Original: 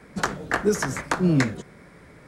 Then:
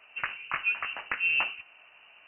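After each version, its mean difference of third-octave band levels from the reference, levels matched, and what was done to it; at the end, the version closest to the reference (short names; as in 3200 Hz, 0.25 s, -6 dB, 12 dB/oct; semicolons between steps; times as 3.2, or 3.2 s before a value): 15.0 dB: inverted band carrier 2900 Hz; gain -7.5 dB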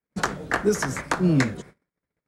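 5.0 dB: gate -43 dBFS, range -42 dB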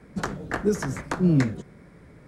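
3.5 dB: low shelf 460 Hz +9 dB; gain -7 dB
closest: third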